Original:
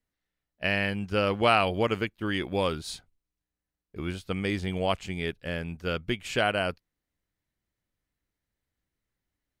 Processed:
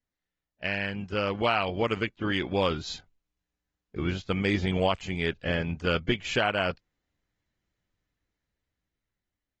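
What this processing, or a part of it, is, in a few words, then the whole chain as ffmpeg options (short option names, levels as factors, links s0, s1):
low-bitrate web radio: -af "dynaudnorm=f=520:g=7:m=2.82,alimiter=limit=0.355:level=0:latency=1:release=450,volume=0.596" -ar 48000 -c:a aac -b:a 24k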